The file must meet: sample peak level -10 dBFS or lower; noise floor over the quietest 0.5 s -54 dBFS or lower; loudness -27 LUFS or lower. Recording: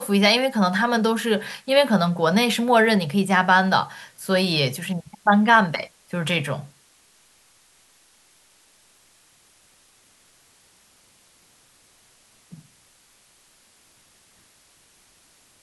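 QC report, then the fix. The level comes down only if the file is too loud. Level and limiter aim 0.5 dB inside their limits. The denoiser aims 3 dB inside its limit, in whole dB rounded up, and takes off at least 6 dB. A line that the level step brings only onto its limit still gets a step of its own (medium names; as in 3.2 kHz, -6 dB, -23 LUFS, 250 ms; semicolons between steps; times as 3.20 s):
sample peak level -3.0 dBFS: fail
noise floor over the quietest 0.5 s -58 dBFS: pass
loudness -20.0 LUFS: fail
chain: trim -7.5 dB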